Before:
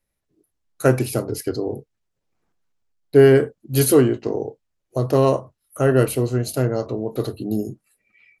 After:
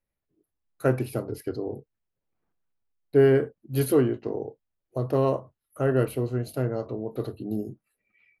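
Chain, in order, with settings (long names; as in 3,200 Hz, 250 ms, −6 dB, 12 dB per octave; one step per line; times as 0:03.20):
parametric band 7,100 Hz −13.5 dB 1.4 octaves
level −6.5 dB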